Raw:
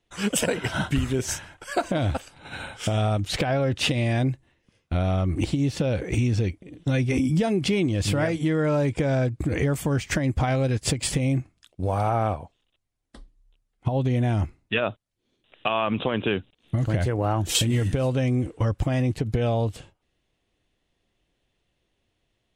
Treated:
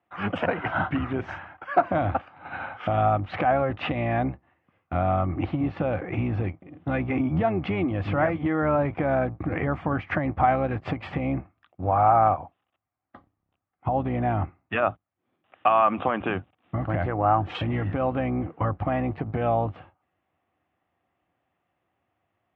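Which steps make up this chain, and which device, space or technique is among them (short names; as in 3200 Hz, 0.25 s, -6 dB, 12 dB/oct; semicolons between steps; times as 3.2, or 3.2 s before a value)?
sub-octave bass pedal (octaver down 1 oct, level -5 dB; speaker cabinet 90–2300 Hz, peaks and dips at 130 Hz -8 dB, 210 Hz -5 dB, 430 Hz -7 dB, 760 Hz +9 dB, 1200 Hz +9 dB)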